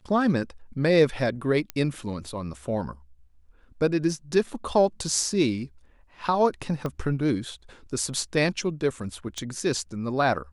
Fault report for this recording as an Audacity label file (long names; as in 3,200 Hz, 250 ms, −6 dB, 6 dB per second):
1.700000	1.700000	click −15 dBFS
6.860000	6.860000	click −18 dBFS
9.380000	9.380000	click −19 dBFS